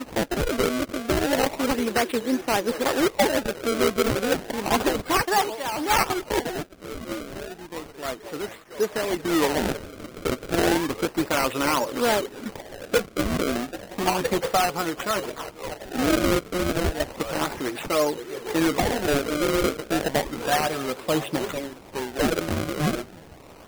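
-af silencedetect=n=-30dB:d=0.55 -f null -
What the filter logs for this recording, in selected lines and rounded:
silence_start: 23.02
silence_end: 23.67 | silence_duration: 0.66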